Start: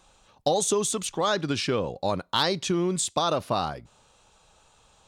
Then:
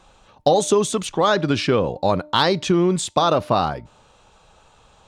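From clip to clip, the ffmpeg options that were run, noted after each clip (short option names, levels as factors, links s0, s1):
-af "highshelf=f=4900:g=-11.5,bandreject=f=301.1:t=h:w=4,bandreject=f=602.2:t=h:w=4,bandreject=f=903.3:t=h:w=4,volume=2.51"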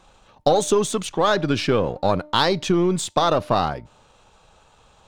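-af "aeval=exprs='if(lt(val(0),0),0.708*val(0),val(0))':c=same"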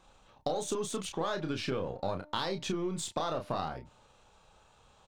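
-filter_complex "[0:a]acompressor=threshold=0.0631:ratio=3,asplit=2[s0][s1];[s1]adelay=31,volume=0.473[s2];[s0][s2]amix=inputs=2:normalize=0,volume=0.376"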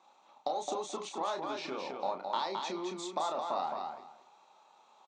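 -filter_complex "[0:a]highpass=f=280:w=0.5412,highpass=f=280:w=1.3066,equalizer=f=290:t=q:w=4:g=-6,equalizer=f=470:t=q:w=4:g=-10,equalizer=f=870:t=q:w=4:g=6,equalizer=f=1600:t=q:w=4:g=-9,equalizer=f=3000:t=q:w=4:g=-8,equalizer=f=5000:t=q:w=4:g=-5,lowpass=f=6200:w=0.5412,lowpass=f=6200:w=1.3066,asplit=2[s0][s1];[s1]aecho=0:1:215|430|645:0.596|0.119|0.0238[s2];[s0][s2]amix=inputs=2:normalize=0"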